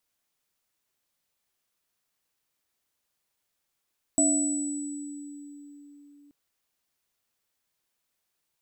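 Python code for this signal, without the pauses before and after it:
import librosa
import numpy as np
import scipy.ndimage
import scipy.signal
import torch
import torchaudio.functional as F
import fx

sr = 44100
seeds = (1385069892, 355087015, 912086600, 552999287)

y = fx.additive_free(sr, length_s=2.13, hz=288.0, level_db=-22.5, upper_db=(-4.5, 2.5), decay_s=4.17, upper_decays_s=(0.9, 2.12), upper_hz=(655.0, 7900.0))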